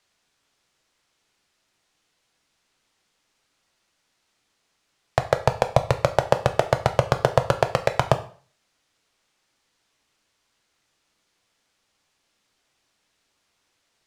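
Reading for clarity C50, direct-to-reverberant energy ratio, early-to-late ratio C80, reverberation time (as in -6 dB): 14.0 dB, 8.0 dB, 18.0 dB, 0.45 s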